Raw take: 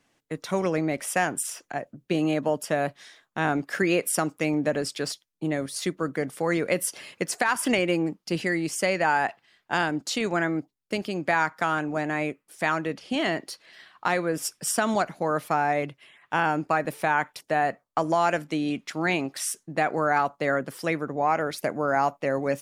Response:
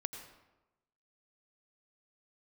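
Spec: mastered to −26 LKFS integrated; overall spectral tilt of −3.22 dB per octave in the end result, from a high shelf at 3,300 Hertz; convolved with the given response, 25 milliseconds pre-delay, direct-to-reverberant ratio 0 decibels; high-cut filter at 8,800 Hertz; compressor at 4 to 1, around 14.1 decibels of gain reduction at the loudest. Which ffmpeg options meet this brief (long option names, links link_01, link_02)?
-filter_complex "[0:a]lowpass=8800,highshelf=frequency=3300:gain=8,acompressor=threshold=-35dB:ratio=4,asplit=2[link_01][link_02];[1:a]atrim=start_sample=2205,adelay=25[link_03];[link_02][link_03]afir=irnorm=-1:irlink=0,volume=0.5dB[link_04];[link_01][link_04]amix=inputs=2:normalize=0,volume=8.5dB"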